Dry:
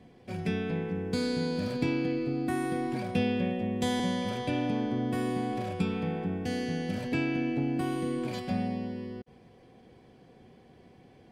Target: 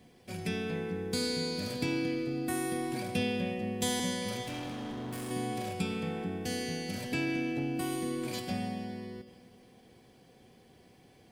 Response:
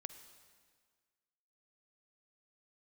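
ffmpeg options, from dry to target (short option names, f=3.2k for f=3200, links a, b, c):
-filter_complex "[0:a]crystalizer=i=3.5:c=0,asettb=1/sr,asplit=3[a][b][c];[a]atrim=end=4.434[d];[b]atrim=start=4.43:end=5.31,asetpts=PTS-STARTPTS,afade=t=in:d=0.004:c=qsin,afade=t=out:st=0.876:d=0.004:c=qsin,asoftclip=type=hard:threshold=-33.5dB[e];[c]atrim=start=5.306[f];[d][e]acrossfade=d=0.004:c1=hsin:c2=qsin[g];[g][f]acrossfade=d=0.004:c1=qsin:c2=hsin[h];[1:a]atrim=start_sample=2205[i];[h][i]afir=irnorm=-1:irlink=0"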